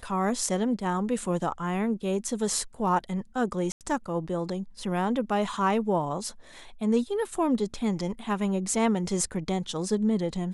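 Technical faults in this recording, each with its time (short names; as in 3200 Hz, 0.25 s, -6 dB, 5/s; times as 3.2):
3.72–3.81 gap 88 ms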